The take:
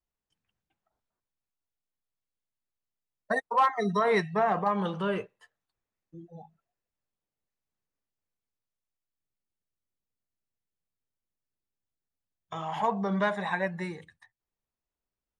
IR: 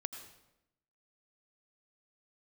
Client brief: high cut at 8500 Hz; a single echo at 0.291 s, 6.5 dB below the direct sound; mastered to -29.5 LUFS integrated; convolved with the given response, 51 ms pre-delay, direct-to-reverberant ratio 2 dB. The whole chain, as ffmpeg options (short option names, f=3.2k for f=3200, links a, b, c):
-filter_complex "[0:a]lowpass=8.5k,aecho=1:1:291:0.473,asplit=2[a][b];[1:a]atrim=start_sample=2205,adelay=51[c];[b][c]afir=irnorm=-1:irlink=0,volume=-1dB[d];[a][d]amix=inputs=2:normalize=0,volume=-4dB"